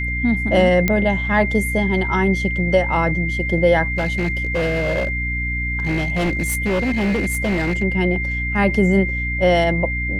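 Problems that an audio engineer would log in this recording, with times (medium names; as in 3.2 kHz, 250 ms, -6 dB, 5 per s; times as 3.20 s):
hum 60 Hz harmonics 5 -25 dBFS
whine 2.1 kHz -23 dBFS
0.88 s: pop -4 dBFS
3.92–7.83 s: clipped -16 dBFS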